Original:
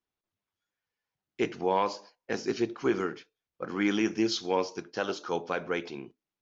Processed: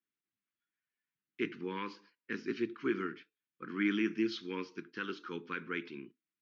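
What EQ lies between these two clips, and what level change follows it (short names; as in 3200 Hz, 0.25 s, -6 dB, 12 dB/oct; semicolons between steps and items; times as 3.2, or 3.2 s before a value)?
BPF 220–2700 Hz; Butterworth band-stop 670 Hz, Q 0.59; air absorption 70 m; 0.0 dB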